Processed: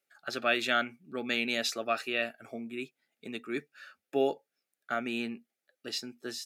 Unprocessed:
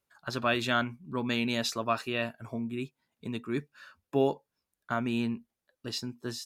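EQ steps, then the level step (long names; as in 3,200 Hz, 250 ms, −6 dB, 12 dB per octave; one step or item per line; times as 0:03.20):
high-pass filter 310 Hz 12 dB per octave
Butterworth band-reject 1,000 Hz, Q 3.1
parametric band 2,200 Hz +4.5 dB 0.54 octaves
0.0 dB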